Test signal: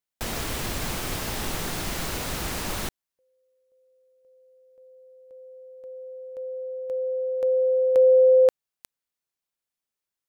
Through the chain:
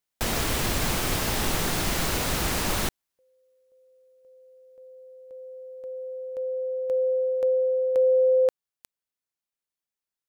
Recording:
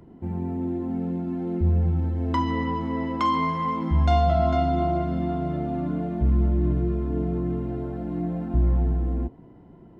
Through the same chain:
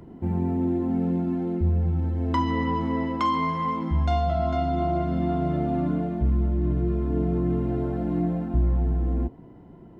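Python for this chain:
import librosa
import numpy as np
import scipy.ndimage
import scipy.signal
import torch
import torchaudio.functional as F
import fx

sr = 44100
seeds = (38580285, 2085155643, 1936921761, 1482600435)

y = fx.rider(x, sr, range_db=4, speed_s=0.5)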